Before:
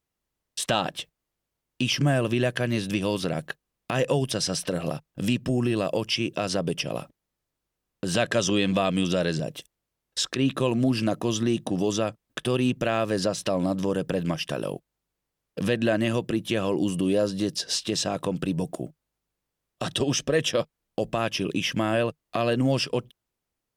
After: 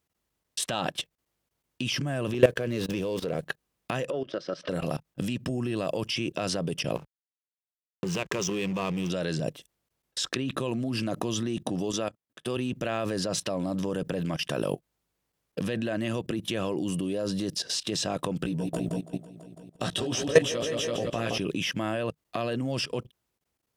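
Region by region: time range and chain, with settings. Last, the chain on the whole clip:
2.34–3.42 s: peaking EQ 460 Hz +11.5 dB 0.54 oct + gate -32 dBFS, range -14 dB + sliding maximum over 3 samples
4.10–4.69 s: compression 16:1, threshold -28 dBFS + cabinet simulation 240–4300 Hz, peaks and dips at 350 Hz +7 dB, 570 Hz +10 dB, 850 Hz -7 dB, 1.3 kHz +9 dB, 2.6 kHz -5 dB, 4 kHz -4 dB
6.95–9.10 s: rippled EQ curve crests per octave 0.77, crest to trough 11 dB + compression, threshold -26 dBFS + hysteresis with a dead band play -33 dBFS
11.91–12.57 s: high-pass 160 Hz 6 dB/octave + upward expansion, over -38 dBFS
18.43–21.38 s: doubling 17 ms -3.5 dB + multi-head delay 166 ms, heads first and second, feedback 48%, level -9.5 dB
whole clip: high-pass 45 Hz; level held to a coarse grid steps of 17 dB; trim +4.5 dB

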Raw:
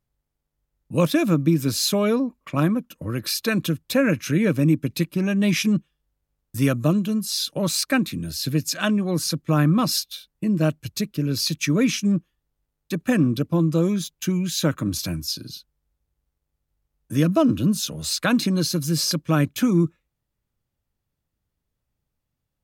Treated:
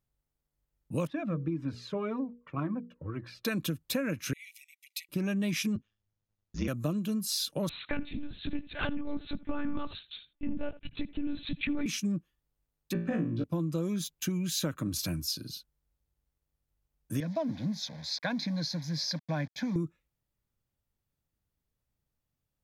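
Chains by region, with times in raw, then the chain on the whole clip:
1.07–3.45 s: low-pass 1.8 kHz + hum notches 60/120/180/240/300/360/420/480 Hz + Shepard-style flanger falling 1.9 Hz
4.33–5.09 s: compression, threshold -26 dBFS + brick-wall FIR high-pass 1.9 kHz
5.75–6.68 s: brick-wall FIR low-pass 7.1 kHz + ring modulator 55 Hz
7.69–11.86 s: delay 76 ms -19.5 dB + monotone LPC vocoder at 8 kHz 290 Hz
12.93–13.44 s: tape spacing loss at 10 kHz 29 dB + flutter echo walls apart 3 m, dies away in 0.43 s
17.20–19.76 s: send-on-delta sampling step -36.5 dBFS + band-pass 160–4800 Hz + static phaser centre 1.9 kHz, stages 8
whole clip: treble shelf 11 kHz +3.5 dB; compression, threshold -23 dBFS; trim -5 dB

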